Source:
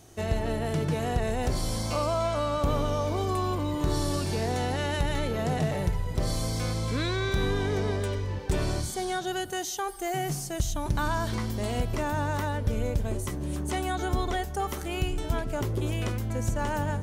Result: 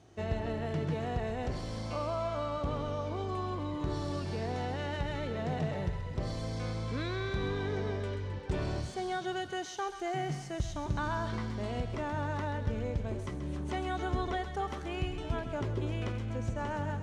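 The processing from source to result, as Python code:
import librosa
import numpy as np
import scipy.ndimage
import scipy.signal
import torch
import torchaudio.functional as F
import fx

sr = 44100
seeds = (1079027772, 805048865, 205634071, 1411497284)

p1 = scipy.ndimage.median_filter(x, 3, mode='constant')
p2 = scipy.signal.sosfilt(scipy.signal.butter(2, 50.0, 'highpass', fs=sr, output='sos'), p1)
p3 = fx.high_shelf(p2, sr, hz=5200.0, db=-5.5)
p4 = fx.rider(p3, sr, range_db=10, speed_s=2.0)
p5 = fx.air_absorb(p4, sr, metres=70.0)
p6 = p5 + fx.echo_thinned(p5, sr, ms=132, feedback_pct=70, hz=980.0, wet_db=-9, dry=0)
y = p6 * 10.0 ** (-5.5 / 20.0)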